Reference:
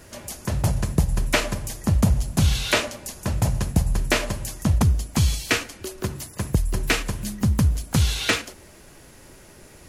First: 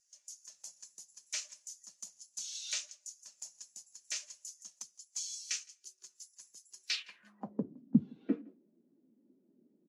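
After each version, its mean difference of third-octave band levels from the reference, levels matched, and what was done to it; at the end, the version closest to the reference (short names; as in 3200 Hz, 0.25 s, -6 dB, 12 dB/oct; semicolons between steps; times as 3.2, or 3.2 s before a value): 18.5 dB: HPF 180 Hz 24 dB/oct; band-pass sweep 6300 Hz -> 240 Hz, 6.84–7.76; on a send: echo 0.164 s -19 dB; on the sum: spectral expander 1.5:1; gain +3.5 dB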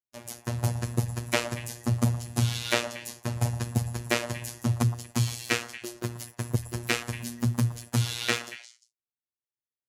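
4.5 dB: robotiser 119 Hz; HPF 48 Hz; gate -41 dBFS, range -56 dB; on a send: delay with a stepping band-pass 0.117 s, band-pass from 890 Hz, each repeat 1.4 oct, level -10 dB; on the sum: gain -3 dB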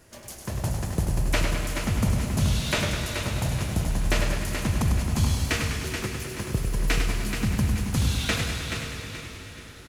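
7.5 dB: in parallel at -11 dB: bit-crush 6-bit; on the sum: feedback echo 0.429 s, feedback 38%, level -6.5 dB; plate-style reverb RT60 4.7 s, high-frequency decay 0.9×, DRR 5 dB; warbling echo 0.102 s, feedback 61%, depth 95 cents, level -6.5 dB; gain -8.5 dB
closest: second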